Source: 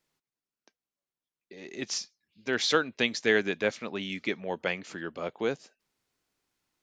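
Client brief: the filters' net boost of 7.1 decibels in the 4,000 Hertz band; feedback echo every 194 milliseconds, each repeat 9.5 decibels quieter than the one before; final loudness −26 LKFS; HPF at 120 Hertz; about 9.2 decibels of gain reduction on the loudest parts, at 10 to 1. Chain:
high-pass filter 120 Hz
parametric band 4,000 Hz +8.5 dB
downward compressor 10 to 1, threshold −26 dBFS
repeating echo 194 ms, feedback 33%, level −9.5 dB
level +6.5 dB

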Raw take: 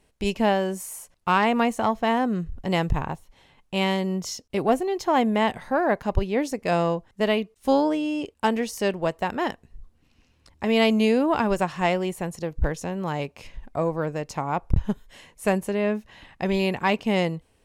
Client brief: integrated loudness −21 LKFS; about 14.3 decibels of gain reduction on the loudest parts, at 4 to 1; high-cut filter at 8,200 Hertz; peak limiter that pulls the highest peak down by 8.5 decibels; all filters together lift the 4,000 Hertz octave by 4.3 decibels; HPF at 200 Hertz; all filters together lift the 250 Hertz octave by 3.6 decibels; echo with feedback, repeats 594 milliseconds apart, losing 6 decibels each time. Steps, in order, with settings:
high-pass filter 200 Hz
low-pass filter 8,200 Hz
parametric band 250 Hz +7 dB
parametric band 4,000 Hz +6.5 dB
downward compressor 4 to 1, threshold −31 dBFS
brickwall limiter −24.5 dBFS
repeating echo 594 ms, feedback 50%, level −6 dB
level +13.5 dB

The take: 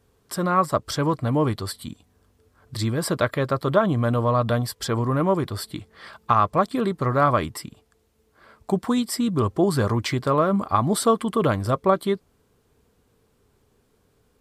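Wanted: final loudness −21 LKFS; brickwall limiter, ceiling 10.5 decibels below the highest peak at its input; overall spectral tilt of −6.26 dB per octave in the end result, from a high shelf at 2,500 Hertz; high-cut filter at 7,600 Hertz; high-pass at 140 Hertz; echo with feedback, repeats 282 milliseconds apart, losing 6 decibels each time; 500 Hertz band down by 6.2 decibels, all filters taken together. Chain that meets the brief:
high-pass filter 140 Hz
low-pass filter 7,600 Hz
parametric band 500 Hz −7.5 dB
high-shelf EQ 2,500 Hz −8.5 dB
brickwall limiter −18.5 dBFS
repeating echo 282 ms, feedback 50%, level −6 dB
level +7.5 dB

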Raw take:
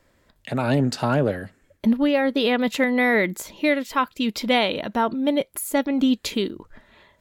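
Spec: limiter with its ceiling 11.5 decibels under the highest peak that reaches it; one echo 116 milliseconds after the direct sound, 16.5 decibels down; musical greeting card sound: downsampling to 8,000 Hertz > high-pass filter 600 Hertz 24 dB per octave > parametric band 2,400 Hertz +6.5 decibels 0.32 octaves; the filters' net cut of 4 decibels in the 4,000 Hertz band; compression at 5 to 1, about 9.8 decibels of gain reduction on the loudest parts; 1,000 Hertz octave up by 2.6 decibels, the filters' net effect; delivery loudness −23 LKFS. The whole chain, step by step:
parametric band 1,000 Hz +4 dB
parametric band 4,000 Hz −7 dB
downward compressor 5 to 1, threshold −26 dBFS
brickwall limiter −25.5 dBFS
single-tap delay 116 ms −16.5 dB
downsampling to 8,000 Hz
high-pass filter 600 Hz 24 dB per octave
parametric band 2,400 Hz +6.5 dB 0.32 octaves
level +16 dB

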